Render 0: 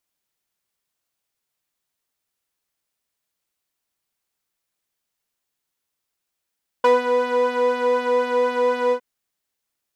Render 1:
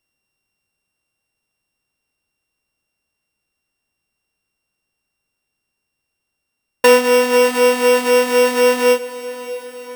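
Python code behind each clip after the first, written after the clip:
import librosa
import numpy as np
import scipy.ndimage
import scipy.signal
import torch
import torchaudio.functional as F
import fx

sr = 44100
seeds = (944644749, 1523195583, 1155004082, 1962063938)

y = np.r_[np.sort(x[:len(x) // 16 * 16].reshape(-1, 16), axis=1).ravel(), x[len(x) // 16 * 16:]]
y = fx.low_shelf(y, sr, hz=400.0, db=7.5)
y = fx.echo_diffused(y, sr, ms=598, feedback_pct=61, wet_db=-15)
y = y * 10.0 ** (4.0 / 20.0)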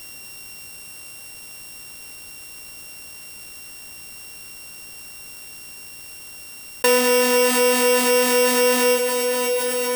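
y = fx.high_shelf(x, sr, hz=4600.0, db=10.5)
y = fx.env_flatten(y, sr, amount_pct=70)
y = y * 10.0 ** (-8.5 / 20.0)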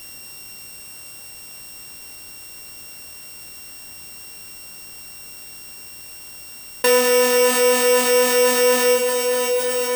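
y = fx.doubler(x, sr, ms=26.0, db=-7.0)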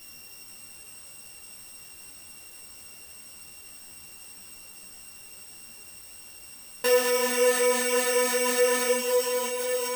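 y = x + 10.0 ** (-9.0 / 20.0) * np.pad(x, (int(458 * sr / 1000.0), 0))[:len(x)]
y = fx.ensemble(y, sr)
y = y * 10.0 ** (-4.5 / 20.0)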